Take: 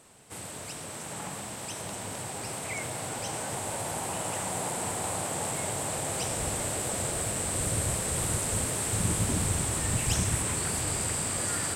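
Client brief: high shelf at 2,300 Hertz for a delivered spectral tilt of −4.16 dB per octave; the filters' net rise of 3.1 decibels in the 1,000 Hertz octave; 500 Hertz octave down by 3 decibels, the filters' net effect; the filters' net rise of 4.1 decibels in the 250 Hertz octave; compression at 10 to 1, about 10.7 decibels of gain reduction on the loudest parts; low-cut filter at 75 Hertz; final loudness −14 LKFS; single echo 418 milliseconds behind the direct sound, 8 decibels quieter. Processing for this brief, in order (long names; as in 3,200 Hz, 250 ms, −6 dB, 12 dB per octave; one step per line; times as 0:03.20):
high-pass filter 75 Hz
parametric band 250 Hz +7.5 dB
parametric band 500 Hz −8 dB
parametric band 1,000 Hz +7.5 dB
high-shelf EQ 2,300 Hz −7 dB
downward compressor 10 to 1, threshold −34 dBFS
single-tap delay 418 ms −8 dB
level +23.5 dB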